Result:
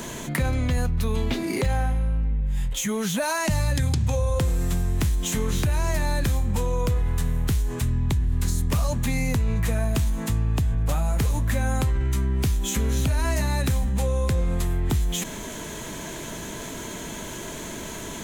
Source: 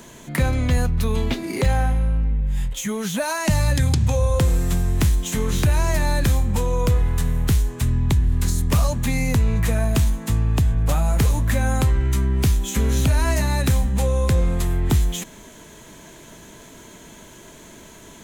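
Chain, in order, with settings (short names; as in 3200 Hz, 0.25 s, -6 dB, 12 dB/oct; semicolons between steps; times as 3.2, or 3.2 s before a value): fast leveller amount 50%; gain -6 dB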